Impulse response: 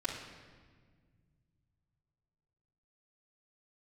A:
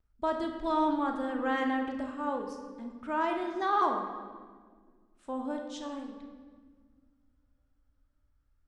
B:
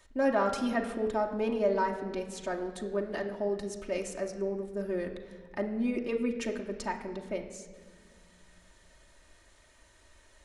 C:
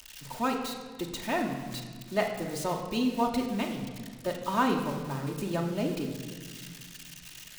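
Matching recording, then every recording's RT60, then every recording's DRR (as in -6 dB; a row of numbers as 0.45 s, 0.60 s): C; 1.6 s, 1.7 s, 1.6 s; -17.0 dB, 1.0 dB, -8.0 dB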